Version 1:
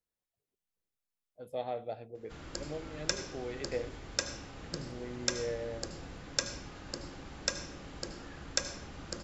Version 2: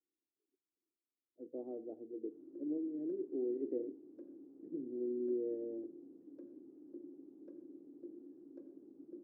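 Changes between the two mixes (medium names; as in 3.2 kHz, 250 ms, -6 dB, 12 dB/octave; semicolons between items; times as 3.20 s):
speech +10.5 dB; master: add Butterworth band-pass 320 Hz, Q 3.2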